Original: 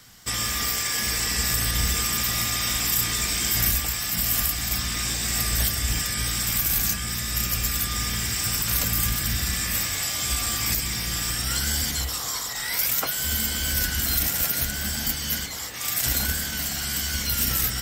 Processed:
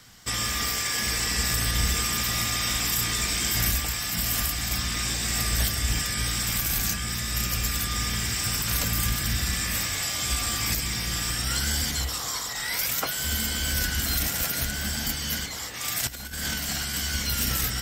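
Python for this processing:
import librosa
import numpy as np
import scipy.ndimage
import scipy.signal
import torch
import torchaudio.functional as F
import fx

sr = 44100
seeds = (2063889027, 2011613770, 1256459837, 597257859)

y = fx.high_shelf(x, sr, hz=11000.0, db=-7.5)
y = fx.over_compress(y, sr, threshold_db=-31.0, ratio=-0.5, at=(16.07, 16.95))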